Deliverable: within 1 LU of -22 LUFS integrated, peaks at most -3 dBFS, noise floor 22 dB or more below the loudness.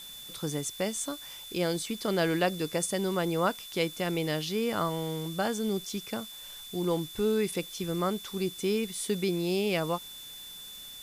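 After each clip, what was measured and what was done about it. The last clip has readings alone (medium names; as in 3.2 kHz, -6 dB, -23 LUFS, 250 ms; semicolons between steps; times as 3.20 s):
steady tone 3.5 kHz; tone level -44 dBFS; noise floor -45 dBFS; noise floor target -53 dBFS; loudness -31.0 LUFS; peak level -14.0 dBFS; loudness target -22.0 LUFS
-> band-stop 3.5 kHz, Q 30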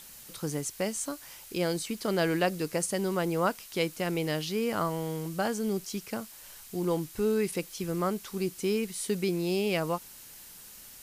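steady tone not found; noise floor -49 dBFS; noise floor target -53 dBFS
-> noise print and reduce 6 dB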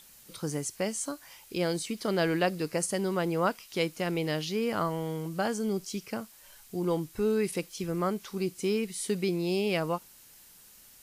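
noise floor -55 dBFS; loudness -31.0 LUFS; peak level -14.0 dBFS; loudness target -22.0 LUFS
-> trim +9 dB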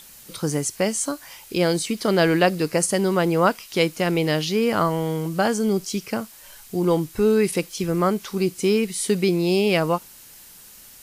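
loudness -22.0 LUFS; peak level -5.0 dBFS; noise floor -46 dBFS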